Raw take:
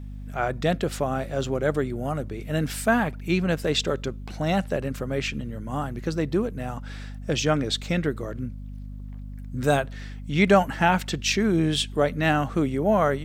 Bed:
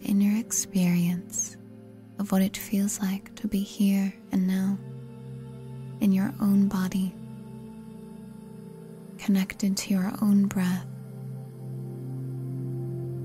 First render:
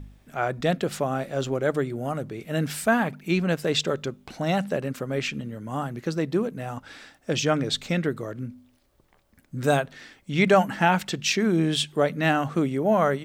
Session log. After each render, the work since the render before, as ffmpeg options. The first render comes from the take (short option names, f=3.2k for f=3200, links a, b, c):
-af "bandreject=f=50:t=h:w=4,bandreject=f=100:t=h:w=4,bandreject=f=150:t=h:w=4,bandreject=f=200:t=h:w=4,bandreject=f=250:t=h:w=4"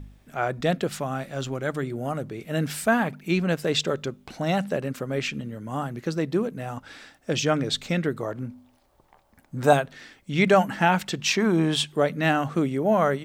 -filter_complex "[0:a]asettb=1/sr,asplit=3[a][b][c];[a]atrim=end=0.874[d];[b]atrim=start=0.87:end=1.83,asetpts=PTS-STARTPTS,afade=t=in:d=0.004:c=qsin,afade=t=out:st=0.956:d=0.004:c=qsin,equalizer=f=460:t=o:w=1.3:g=-6.5[e];[c]atrim=start=1.826[f];[d][e]acrossfade=d=0.004:c1=hsin:c2=qsin[g];[g][f]acrossfade=d=0.004:c1=qsin:c2=hsin,asettb=1/sr,asplit=3[h][i][j];[h]atrim=end=8.204[k];[i]atrim=start=8.2:end=9.73,asetpts=PTS-STARTPTS,afade=t=in:d=0.004:c=qsin,afade=t=out:st=1.526:d=0.004:c=qsin,equalizer=f=840:w=1.5:g=11[l];[j]atrim=start=9.726[m];[k][l]acrossfade=d=0.004:c1=hsin:c2=qsin[n];[n][m]acrossfade=d=0.004:c1=qsin:c2=hsin,asettb=1/sr,asplit=3[o][p][q];[o]atrim=end=11.204[r];[p]atrim=start=11.2:end=11.87,asetpts=PTS-STARTPTS,afade=t=in:d=0.004:c=qsin,afade=t=out:st=0.666:d=0.004:c=qsin,equalizer=f=970:t=o:w=0.81:g=11[s];[q]atrim=start=11.866[t];[r][s]acrossfade=d=0.004:c1=hsin:c2=qsin[u];[u][t]acrossfade=d=0.004:c1=qsin:c2=hsin"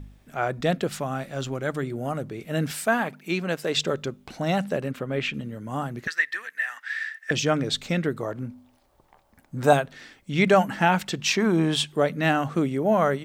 -filter_complex "[0:a]asettb=1/sr,asplit=3[a][b][c];[a]atrim=end=2.714[d];[b]atrim=start=2.71:end=3.77,asetpts=PTS-STARTPTS,afade=t=in:d=0.004:c=qsin,afade=t=out:st=1.056:d=0.004:c=qsin,highpass=f=310:p=1[e];[c]atrim=start=3.766[f];[d][e]acrossfade=d=0.004:c1=hsin:c2=qsin[g];[g][f]acrossfade=d=0.004:c1=qsin:c2=hsin,asettb=1/sr,asplit=3[h][i][j];[h]atrim=end=4.914[k];[i]atrim=start=4.91:end=5.34,asetpts=PTS-STARTPTS,afade=t=in:d=0.004:c=qsin,afade=t=out:st=0.426:d=0.004:c=qsin,highshelf=f=4.2k:t=q:w=1.5:g=-6.5[l];[j]atrim=start=5.336[m];[k][l]acrossfade=d=0.004:c1=hsin:c2=qsin[n];[n][m]acrossfade=d=0.004:c1=qsin:c2=hsin,asettb=1/sr,asplit=3[o][p][q];[o]atrim=end=6.074[r];[p]atrim=start=6.07:end=7.31,asetpts=PTS-STARTPTS,afade=t=in:d=0.004:c=qsin,afade=t=out:st=1.236:d=0.004:c=qsin,highpass=f=1.8k:t=q:w=15[s];[q]atrim=start=7.306[t];[r][s]acrossfade=d=0.004:c1=hsin:c2=qsin[u];[u][t]acrossfade=d=0.004:c1=qsin:c2=hsin"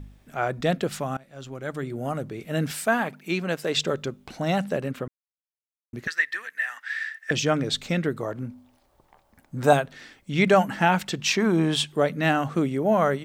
-filter_complex "[0:a]asplit=4[a][b][c][d];[a]atrim=end=1.17,asetpts=PTS-STARTPTS,afade=t=out:st=1.166:d=0.004:c=hsin:silence=0.0749894[e];[b]atrim=start=1.17:end=5.08,asetpts=PTS-STARTPTS,afade=t=in:d=0.88:silence=0.0749894,afade=t=out:st=3.906:d=0.004:c=hsin[f];[c]atrim=start=5.08:end=5.93,asetpts=PTS-STARTPTS,volume=0[g];[d]atrim=start=5.93,asetpts=PTS-STARTPTS,afade=t=in:d=0.004:c=hsin[h];[e][f][g][h]concat=n=4:v=0:a=1"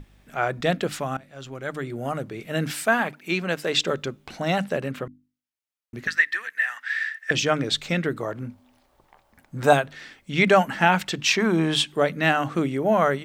-af "equalizer=f=2.2k:t=o:w=2.3:g=4,bandreject=f=50:t=h:w=6,bandreject=f=100:t=h:w=6,bandreject=f=150:t=h:w=6,bandreject=f=200:t=h:w=6,bandreject=f=250:t=h:w=6,bandreject=f=300:t=h:w=6"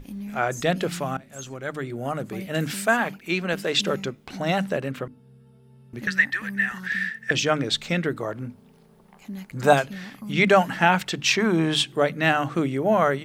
-filter_complex "[1:a]volume=-12.5dB[a];[0:a][a]amix=inputs=2:normalize=0"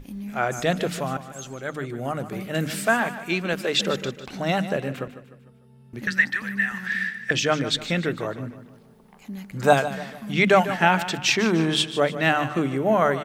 -af "aecho=1:1:150|300|450|600:0.224|0.0985|0.0433|0.0191"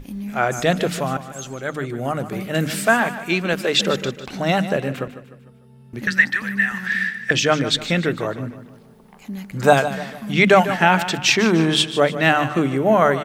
-af "volume=4.5dB,alimiter=limit=-1dB:level=0:latency=1"